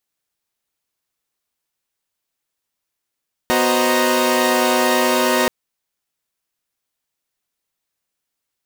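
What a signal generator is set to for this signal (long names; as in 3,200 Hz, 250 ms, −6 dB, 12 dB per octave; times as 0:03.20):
held notes B3/F#4/C5/D#5/A#5 saw, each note −18.5 dBFS 1.98 s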